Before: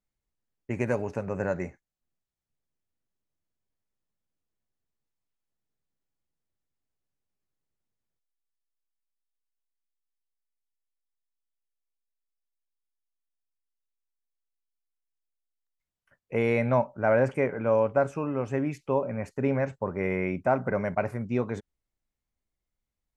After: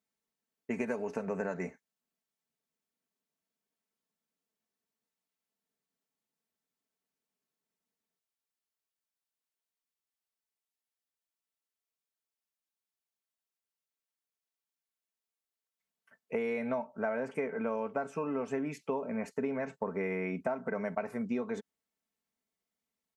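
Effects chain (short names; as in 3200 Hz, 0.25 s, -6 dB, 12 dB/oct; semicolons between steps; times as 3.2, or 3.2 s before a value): HPF 190 Hz 12 dB/oct; comb 4.5 ms, depth 62%; compressor 10:1, threshold -30 dBFS, peak gain reduction 14 dB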